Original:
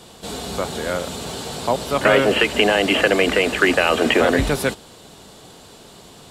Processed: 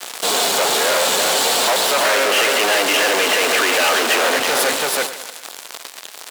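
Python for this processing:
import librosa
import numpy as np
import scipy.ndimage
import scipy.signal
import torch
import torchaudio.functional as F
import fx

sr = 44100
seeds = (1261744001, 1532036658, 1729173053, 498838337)

y = fx.rider(x, sr, range_db=3, speed_s=0.5)
y = y + 10.0 ** (-8.5 / 20.0) * np.pad(y, (int(329 * sr / 1000.0), 0))[:len(y)]
y = fx.fuzz(y, sr, gain_db=41.0, gate_db=-36.0)
y = scipy.signal.sosfilt(scipy.signal.butter(2, 550.0, 'highpass', fs=sr, output='sos'), y)
y = fx.echo_split(y, sr, split_hz=1600.0, low_ms=103, high_ms=140, feedback_pct=52, wet_db=-12.0)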